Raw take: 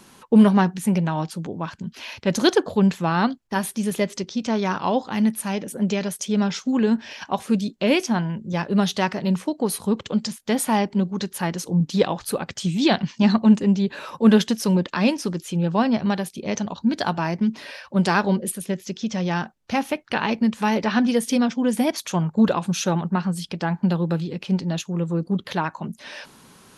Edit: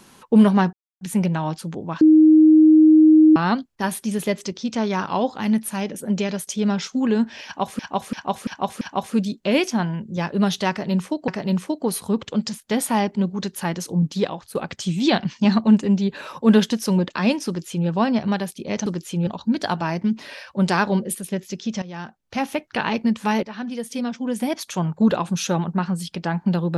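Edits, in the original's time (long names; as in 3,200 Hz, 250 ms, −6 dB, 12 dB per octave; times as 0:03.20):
0:00.73: splice in silence 0.28 s
0:01.73–0:03.08: beep over 312 Hz −8 dBFS
0:07.17–0:07.51: repeat, 5 plays
0:09.06–0:09.64: repeat, 2 plays
0:11.82–0:12.33: fade out, to −14 dB
0:15.25–0:15.66: duplicate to 0:16.64
0:19.19–0:19.90: fade in, from −16 dB
0:20.80–0:22.39: fade in, from −14.5 dB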